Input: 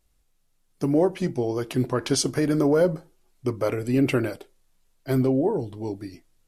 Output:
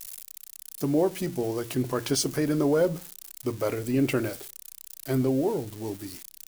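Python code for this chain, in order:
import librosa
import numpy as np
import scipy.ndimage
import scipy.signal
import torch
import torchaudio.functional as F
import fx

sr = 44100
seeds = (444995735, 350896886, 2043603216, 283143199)

y = x + 0.5 * 10.0 ** (-27.5 / 20.0) * np.diff(np.sign(x), prepend=np.sign(x[:1]))
y = fx.hum_notches(y, sr, base_hz=60, count=3)
y = y * 10.0 ** (-3.0 / 20.0)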